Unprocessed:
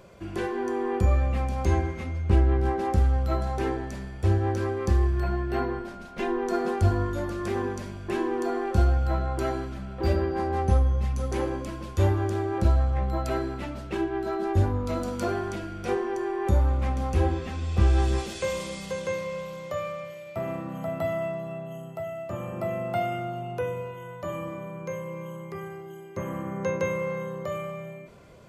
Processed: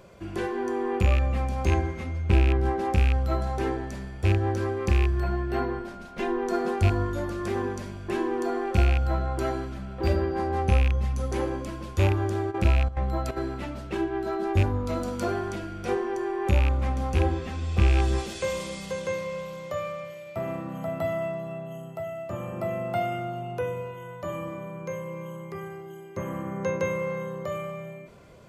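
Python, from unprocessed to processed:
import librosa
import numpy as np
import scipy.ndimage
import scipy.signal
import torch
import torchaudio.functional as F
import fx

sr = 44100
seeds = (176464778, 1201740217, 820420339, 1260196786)

y = fx.rattle_buzz(x, sr, strikes_db=-18.0, level_db=-20.0)
y = fx.step_gate(y, sr, bpm=177, pattern='xxx..xxxx.x', floor_db=-12.0, edge_ms=4.5, at=(12.5, 13.36), fade=0.02)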